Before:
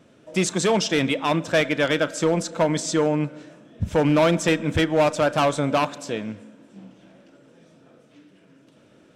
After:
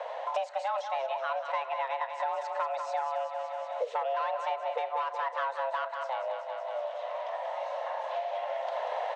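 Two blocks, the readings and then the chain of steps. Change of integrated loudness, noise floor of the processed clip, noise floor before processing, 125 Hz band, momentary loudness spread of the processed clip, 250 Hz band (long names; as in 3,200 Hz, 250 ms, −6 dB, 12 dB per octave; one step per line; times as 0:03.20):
−11.5 dB, −41 dBFS, −55 dBFS, below −40 dB, 4 LU, below −40 dB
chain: camcorder AGC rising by 9.3 dB per second
frequency shifter +400 Hz
head-to-tape spacing loss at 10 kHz 35 dB
repeating echo 187 ms, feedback 52%, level −8.5 dB
multiband upward and downward compressor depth 100%
level −8.5 dB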